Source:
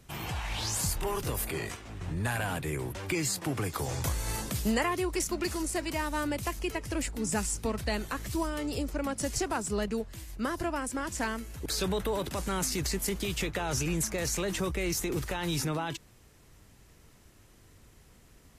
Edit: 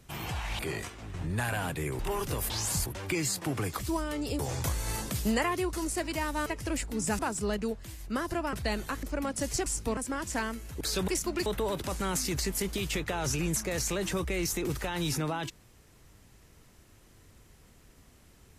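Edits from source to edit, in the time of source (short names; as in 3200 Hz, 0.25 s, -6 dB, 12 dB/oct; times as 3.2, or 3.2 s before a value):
0.59–0.95 swap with 1.46–2.86
5.13–5.51 move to 11.93
6.24–6.71 cut
7.44–7.75 swap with 9.48–10.82
8.25–8.85 move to 3.79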